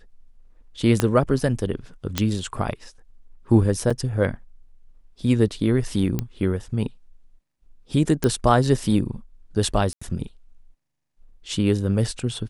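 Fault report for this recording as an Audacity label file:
1.000000	1.000000	click −5 dBFS
2.180000	2.180000	click −5 dBFS
3.900000	3.910000	drop-out 5.6 ms
6.190000	6.190000	click −11 dBFS
8.240000	8.240000	click −8 dBFS
9.930000	10.020000	drop-out 85 ms

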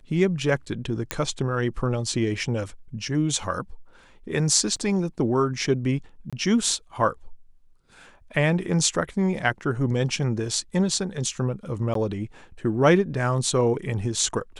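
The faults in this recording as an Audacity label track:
1.110000	1.110000	click −9 dBFS
4.760000	4.760000	drop-out 4.8 ms
6.300000	6.330000	drop-out 26 ms
11.940000	11.950000	drop-out 13 ms

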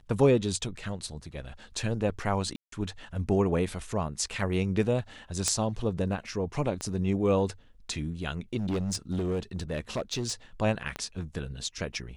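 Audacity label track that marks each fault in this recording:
2.560000	2.720000	drop-out 163 ms
5.480000	5.480000	click −12 dBFS
6.810000	6.810000	click −20 dBFS
8.590000	10.330000	clipping −25.5 dBFS
10.960000	10.960000	click −19 dBFS

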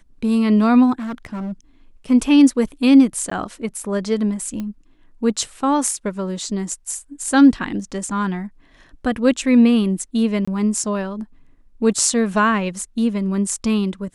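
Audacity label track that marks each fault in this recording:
0.990000	1.530000	clipping −24 dBFS
3.300000	3.310000	drop-out 14 ms
4.600000	4.600000	click −16 dBFS
10.450000	10.470000	drop-out 25 ms

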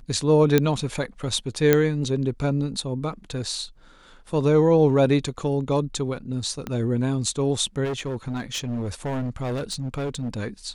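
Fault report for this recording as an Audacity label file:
0.580000	0.580000	click −5 dBFS
1.730000	1.730000	click −4 dBFS
6.670000	6.670000	click −16 dBFS
7.840000	10.380000	clipping −24 dBFS

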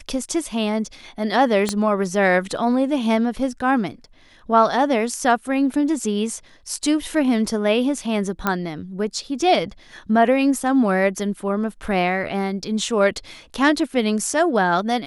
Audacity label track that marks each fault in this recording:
1.690000	1.690000	click −8 dBFS
8.470000	8.470000	click −6 dBFS

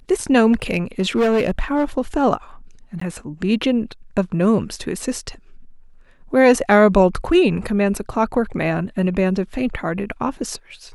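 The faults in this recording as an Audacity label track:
0.520000	1.840000	clipping −13 dBFS
3.000000	3.010000	drop-out 14 ms

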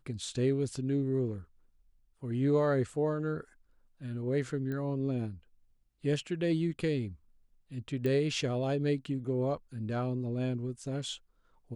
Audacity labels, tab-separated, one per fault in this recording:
4.720000	4.720000	click −27 dBFS
8.060000	8.060000	click −22 dBFS

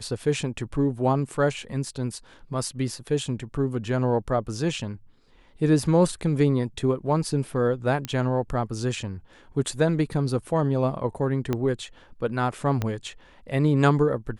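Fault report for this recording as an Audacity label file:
8.050000	8.050000	click −14 dBFS
11.530000	11.530000	click −13 dBFS
12.820000	12.820000	click −13 dBFS

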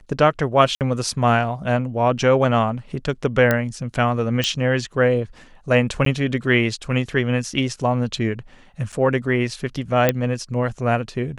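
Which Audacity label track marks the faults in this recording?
0.750000	0.810000	drop-out 58 ms
3.510000	3.510000	click −5 dBFS
4.440000	4.440000	click −7 dBFS
6.050000	6.060000	drop-out
8.920000	8.930000	drop-out 6.7 ms
10.090000	10.090000	click −3 dBFS

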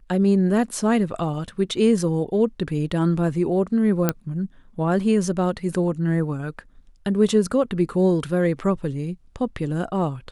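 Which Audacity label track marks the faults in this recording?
4.090000	4.090000	click −5 dBFS

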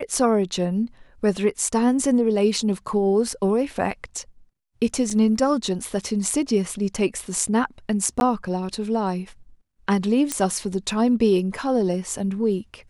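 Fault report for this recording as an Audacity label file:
5.100000	5.100000	drop-out 3.7 ms
8.200000	8.210000	drop-out 11 ms
10.320000	10.320000	click −8 dBFS

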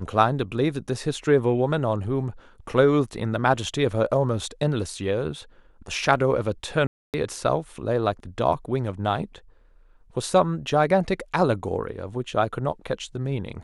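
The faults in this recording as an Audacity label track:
6.870000	7.140000	drop-out 268 ms

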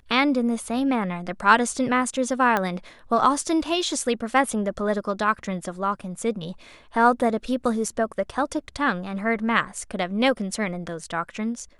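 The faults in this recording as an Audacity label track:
2.570000	2.570000	click −10 dBFS

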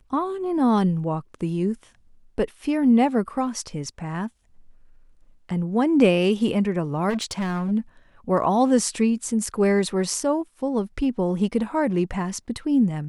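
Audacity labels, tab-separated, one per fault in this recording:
7.090000	7.720000	clipping −22 dBFS

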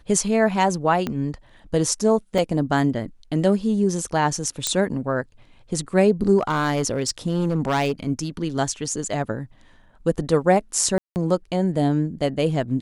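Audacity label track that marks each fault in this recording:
1.070000	1.070000	click −12 dBFS
2.380000	2.380000	drop-out 4 ms
4.670000	4.670000	click −6 dBFS
6.380000	7.920000	clipping −16 dBFS
10.980000	11.160000	drop-out 179 ms

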